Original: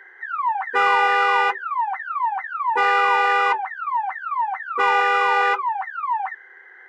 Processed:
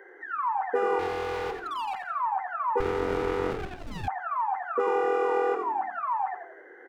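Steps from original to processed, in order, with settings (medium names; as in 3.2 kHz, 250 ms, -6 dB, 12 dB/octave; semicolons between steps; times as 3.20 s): ten-band graphic EQ 125 Hz -6 dB, 250 Hz +9 dB, 500 Hz +11 dB, 1 kHz -4 dB, 2 kHz -7 dB, 4 kHz -12 dB; compression 3:1, threshold -27 dBFS, peak gain reduction 11 dB; 0.99–2.01 s: overload inside the chain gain 30.5 dB; frequency-shifting echo 87 ms, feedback 43%, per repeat -41 Hz, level -7 dB; 2.80–4.08 s: sliding maximum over 33 samples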